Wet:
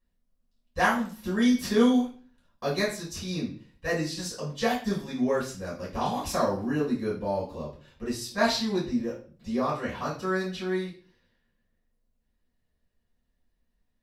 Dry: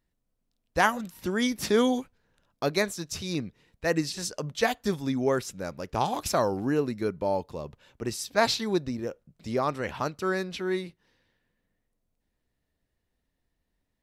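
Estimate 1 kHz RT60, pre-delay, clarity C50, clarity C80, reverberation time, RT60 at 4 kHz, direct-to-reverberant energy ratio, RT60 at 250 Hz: 0.40 s, 4 ms, 7.0 dB, 12.0 dB, 0.40 s, 0.40 s, -8.5 dB, 0.50 s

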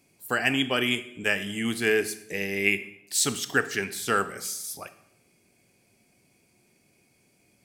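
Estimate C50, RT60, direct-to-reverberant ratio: 14.0 dB, 0.80 s, 11.5 dB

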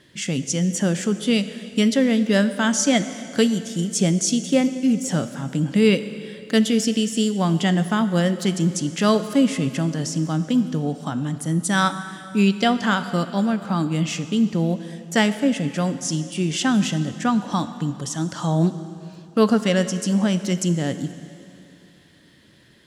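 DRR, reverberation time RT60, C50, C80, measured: 11.0 dB, 2.7 s, 12.0 dB, 12.5 dB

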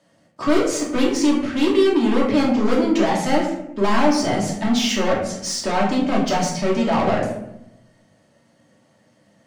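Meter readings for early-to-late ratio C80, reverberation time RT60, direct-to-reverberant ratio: 7.0 dB, 0.85 s, -4.5 dB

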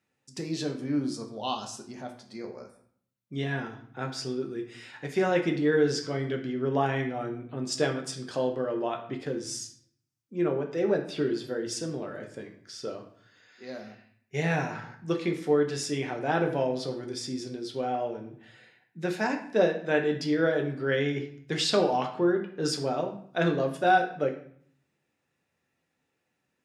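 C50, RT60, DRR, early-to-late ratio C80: 9.0 dB, 0.60 s, 2.0 dB, 12.5 dB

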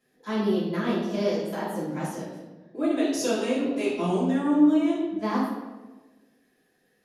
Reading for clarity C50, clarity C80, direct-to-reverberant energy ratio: 1.0 dB, 4.0 dB, -10.5 dB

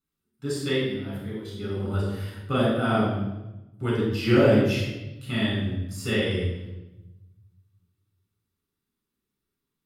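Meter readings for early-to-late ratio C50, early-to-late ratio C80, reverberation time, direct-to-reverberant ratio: 0.5 dB, 4.0 dB, 1.0 s, -5.0 dB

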